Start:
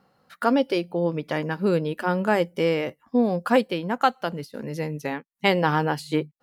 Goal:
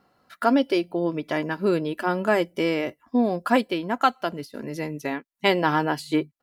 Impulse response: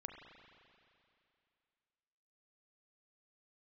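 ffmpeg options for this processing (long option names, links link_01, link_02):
-af "aecho=1:1:3:0.43"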